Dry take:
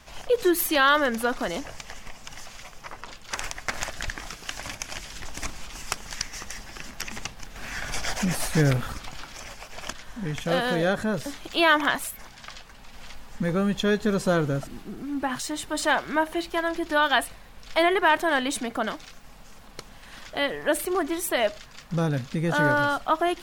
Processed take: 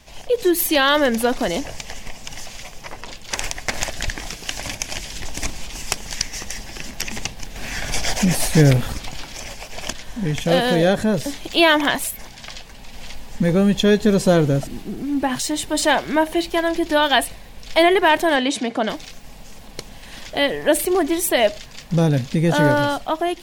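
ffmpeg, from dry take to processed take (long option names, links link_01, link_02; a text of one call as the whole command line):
ffmpeg -i in.wav -filter_complex "[0:a]asplit=3[link_01][link_02][link_03];[link_01]afade=type=out:start_time=18.35:duration=0.02[link_04];[link_02]highpass=160,lowpass=6200,afade=type=in:start_time=18.35:duration=0.02,afade=type=out:start_time=18.88:duration=0.02[link_05];[link_03]afade=type=in:start_time=18.88:duration=0.02[link_06];[link_04][link_05][link_06]amix=inputs=3:normalize=0,equalizer=frequency=1300:width=2:gain=-10,dynaudnorm=framelen=150:gausssize=9:maxgain=5.5dB,volume=3dB" out.wav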